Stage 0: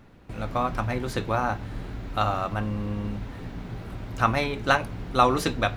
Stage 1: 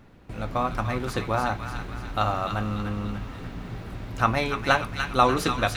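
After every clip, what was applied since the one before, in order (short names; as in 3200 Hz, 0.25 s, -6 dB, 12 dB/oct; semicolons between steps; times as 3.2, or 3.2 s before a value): thin delay 0.293 s, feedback 52%, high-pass 1400 Hz, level -4.5 dB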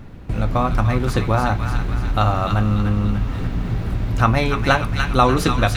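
low shelf 190 Hz +10 dB; in parallel at +2 dB: compressor, threshold -27 dBFS, peak gain reduction 14 dB; on the sum: gain +1 dB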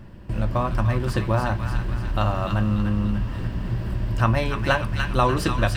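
ripple EQ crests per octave 1.3, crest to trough 7 dB; gain -5 dB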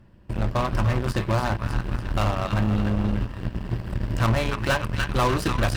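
added harmonics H 3 -31 dB, 7 -19 dB, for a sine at -6 dBFS; overloaded stage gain 23.5 dB; gain +7.5 dB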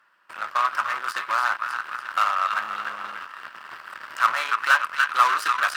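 resonant high-pass 1300 Hz, resonance Q 4.3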